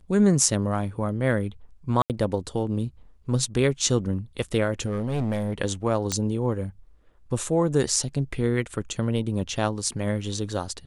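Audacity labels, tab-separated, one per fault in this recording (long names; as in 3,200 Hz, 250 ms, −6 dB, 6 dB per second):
2.020000	2.100000	drop-out 78 ms
4.850000	5.540000	clipping −22 dBFS
6.120000	6.120000	click −10 dBFS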